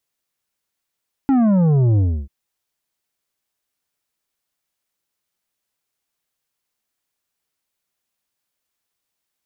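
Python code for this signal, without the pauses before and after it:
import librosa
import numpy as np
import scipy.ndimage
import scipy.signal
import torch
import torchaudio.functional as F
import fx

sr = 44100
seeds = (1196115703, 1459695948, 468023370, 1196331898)

y = fx.sub_drop(sr, level_db=-13, start_hz=280.0, length_s=0.99, drive_db=8.5, fade_s=0.3, end_hz=65.0)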